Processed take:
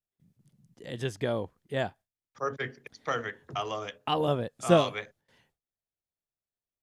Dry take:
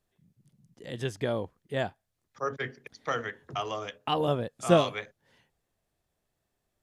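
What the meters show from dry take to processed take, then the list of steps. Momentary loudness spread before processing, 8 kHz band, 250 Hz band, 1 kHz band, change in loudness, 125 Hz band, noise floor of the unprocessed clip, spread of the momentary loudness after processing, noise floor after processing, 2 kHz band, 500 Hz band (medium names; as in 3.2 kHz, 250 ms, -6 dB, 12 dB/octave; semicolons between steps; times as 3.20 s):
15 LU, 0.0 dB, 0.0 dB, 0.0 dB, 0.0 dB, 0.0 dB, -81 dBFS, 15 LU, under -85 dBFS, 0.0 dB, 0.0 dB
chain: gate with hold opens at -57 dBFS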